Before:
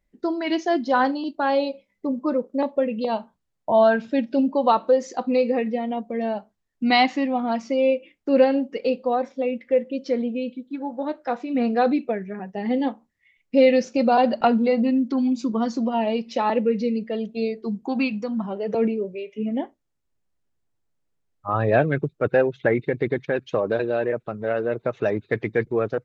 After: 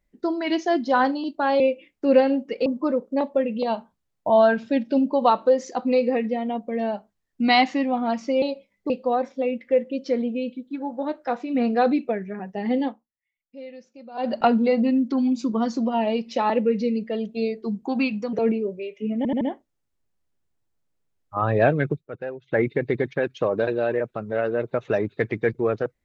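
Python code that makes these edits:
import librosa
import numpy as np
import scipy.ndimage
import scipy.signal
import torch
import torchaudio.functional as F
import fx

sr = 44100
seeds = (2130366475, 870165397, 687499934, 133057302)

y = fx.edit(x, sr, fx.swap(start_s=1.6, length_s=0.48, other_s=7.84, other_length_s=1.06),
    fx.fade_down_up(start_s=12.8, length_s=1.58, db=-23.5, fade_s=0.24),
    fx.cut(start_s=18.33, length_s=0.36),
    fx.stutter(start_s=19.53, slice_s=0.08, count=4),
    fx.fade_down_up(start_s=22.05, length_s=0.66, db=-13.5, fade_s=0.13), tone=tone)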